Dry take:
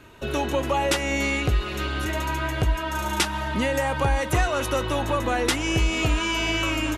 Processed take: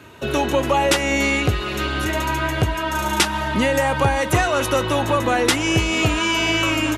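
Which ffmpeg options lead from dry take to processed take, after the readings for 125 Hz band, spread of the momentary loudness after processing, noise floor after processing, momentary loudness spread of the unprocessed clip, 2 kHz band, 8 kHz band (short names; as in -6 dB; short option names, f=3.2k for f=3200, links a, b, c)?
+3.5 dB, 4 LU, -26 dBFS, 4 LU, +5.5 dB, +5.5 dB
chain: -af "highpass=f=72:w=0.5412,highpass=f=72:w=1.3066,volume=5.5dB"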